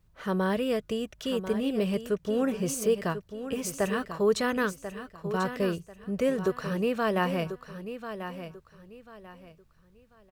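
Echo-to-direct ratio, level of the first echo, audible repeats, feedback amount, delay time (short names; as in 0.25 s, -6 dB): -10.0 dB, -10.5 dB, 3, 28%, 1.041 s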